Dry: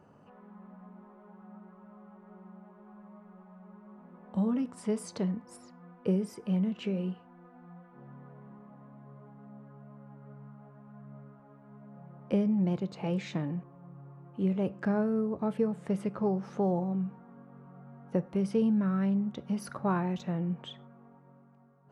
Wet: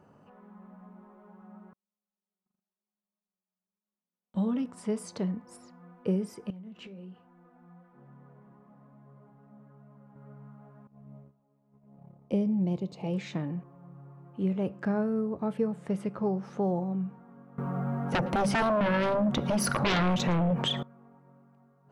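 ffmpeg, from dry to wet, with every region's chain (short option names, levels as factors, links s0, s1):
-filter_complex "[0:a]asettb=1/sr,asplit=3[s0][s1][s2];[s0]atrim=end=1.734[s3];[s1]atrim=start=1.73:end=4.64,asetpts=PTS-STARTPTS,afade=t=in:d=0.004:c=qsin,afade=t=out:st=2.906:d=0.004:c=qsin,equalizer=f=3500:w=2.8:g=9,agate=range=0.00562:threshold=0.00562:ratio=16:release=100:detection=peak[s4];[s2]atrim=start=4.636[s5];[s3][s4]acrossfade=d=0.004:c1=hsin:c2=qsin[s6];[s6][s5]acrossfade=d=0.004:c1=qsin:c2=hsin,asettb=1/sr,asplit=3[s7][s8][s9];[s7]atrim=end=6.504[s10];[s8]atrim=start=6.5:end=10.16,asetpts=PTS-STARTPTS,afade=t=in:d=0.004:c=qsin,afade=t=out:st=3.656:d=0.004:c=qsin,acompressor=threshold=0.0141:ratio=16:attack=3.2:release=140:knee=1:detection=peak,flanger=delay=6.3:depth=6:regen=-65:speed=1.2:shape=sinusoidal[s11];[s9]atrim=start=10.156[s12];[s10][s11]acrossfade=d=0.004:c1=hsin:c2=qsin[s13];[s13][s12]acrossfade=d=0.004:c1=qsin:c2=hsin,asettb=1/sr,asplit=3[s14][s15][s16];[s14]atrim=end=10.874[s17];[s15]atrim=start=10.87:end=13.14,asetpts=PTS-STARTPTS,afade=t=in:d=0.004:c=qsin,afade=t=out:st=2.266:d=0.004:c=qsin,agate=range=0.178:threshold=0.00316:ratio=16:release=100:detection=peak,equalizer=f=1500:w=1.8:g=-13.5,aecho=1:1:74:0.0708,atrim=end_sample=100107[s18];[s16]atrim=start=13.136[s19];[s17][s18]acrossfade=d=0.004:c1=hsin:c2=qsin[s20];[s20][s19]acrossfade=d=0.004:c1=qsin:c2=hsin,asettb=1/sr,asplit=3[s21][s22][s23];[s21]atrim=end=17.584[s24];[s22]atrim=start=17.58:end=20.83,asetpts=PTS-STARTPTS,afade=t=in:d=0.004:c=qsin,afade=t=out:st=3.246:d=0.004:c=qsin,aeval=exprs='0.15*sin(PI/2*5.62*val(0)/0.15)':c=same,acompressor=threshold=0.0631:ratio=6:attack=3.2:release=140:knee=1:detection=peak,aecho=1:1:113:0.0668,atrim=end_sample=143325[s25];[s23]atrim=start=20.826[s26];[s24][s25]acrossfade=d=0.004:c1=hsin:c2=qsin[s27];[s27][s26]acrossfade=d=0.004:c1=qsin:c2=hsin"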